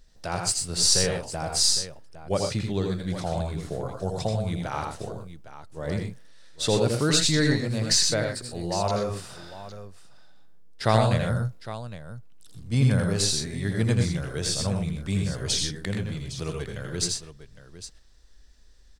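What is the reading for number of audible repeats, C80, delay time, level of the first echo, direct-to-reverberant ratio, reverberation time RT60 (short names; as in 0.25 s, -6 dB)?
3, none, 82 ms, -5.0 dB, none, none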